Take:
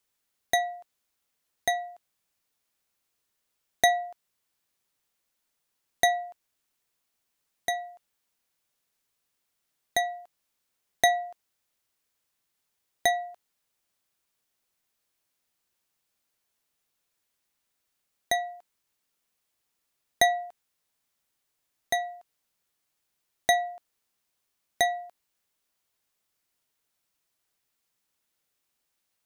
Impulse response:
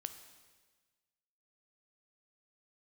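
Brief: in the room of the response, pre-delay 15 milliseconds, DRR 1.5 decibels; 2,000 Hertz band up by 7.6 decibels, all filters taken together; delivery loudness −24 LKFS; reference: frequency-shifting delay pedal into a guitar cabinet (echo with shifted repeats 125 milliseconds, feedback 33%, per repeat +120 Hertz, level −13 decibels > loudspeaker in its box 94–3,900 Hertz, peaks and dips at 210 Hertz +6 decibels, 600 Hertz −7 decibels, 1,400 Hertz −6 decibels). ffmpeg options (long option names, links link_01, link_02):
-filter_complex "[0:a]equalizer=frequency=2000:width_type=o:gain=8.5,asplit=2[link_01][link_02];[1:a]atrim=start_sample=2205,adelay=15[link_03];[link_02][link_03]afir=irnorm=-1:irlink=0,volume=1dB[link_04];[link_01][link_04]amix=inputs=2:normalize=0,asplit=4[link_05][link_06][link_07][link_08];[link_06]adelay=125,afreqshift=120,volume=-13dB[link_09];[link_07]adelay=250,afreqshift=240,volume=-22.6dB[link_10];[link_08]adelay=375,afreqshift=360,volume=-32.3dB[link_11];[link_05][link_09][link_10][link_11]amix=inputs=4:normalize=0,highpass=94,equalizer=frequency=210:width_type=q:width=4:gain=6,equalizer=frequency=600:width_type=q:width=4:gain=-7,equalizer=frequency=1400:width_type=q:width=4:gain=-6,lowpass=frequency=3900:width=0.5412,lowpass=frequency=3900:width=1.3066,volume=-1.5dB"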